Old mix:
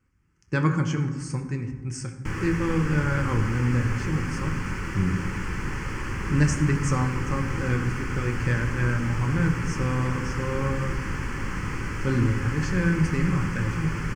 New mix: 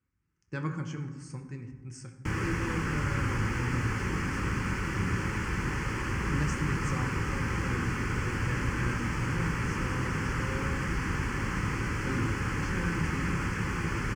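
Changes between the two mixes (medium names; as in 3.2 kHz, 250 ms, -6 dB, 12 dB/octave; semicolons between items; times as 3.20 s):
speech -11.0 dB; master: add high-pass 42 Hz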